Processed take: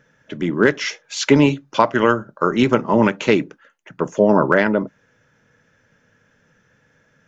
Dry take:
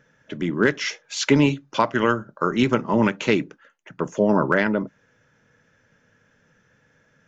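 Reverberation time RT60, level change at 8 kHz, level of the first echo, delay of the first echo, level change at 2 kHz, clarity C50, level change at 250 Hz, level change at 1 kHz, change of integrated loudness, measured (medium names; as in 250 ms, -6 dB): no reverb, no reading, no echo, no echo, +3.0 dB, no reverb, +3.5 dB, +4.5 dB, +4.0 dB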